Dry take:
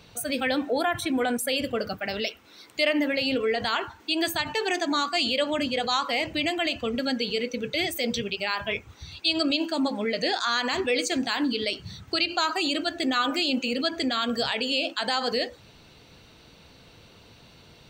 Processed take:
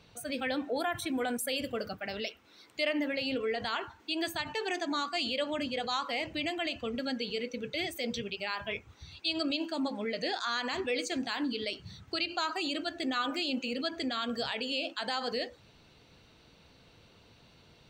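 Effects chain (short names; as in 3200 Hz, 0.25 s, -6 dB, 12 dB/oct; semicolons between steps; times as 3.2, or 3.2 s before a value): high shelf 8400 Hz -7.5 dB, from 0.76 s +3.5 dB, from 1.89 s -6 dB; gain -7 dB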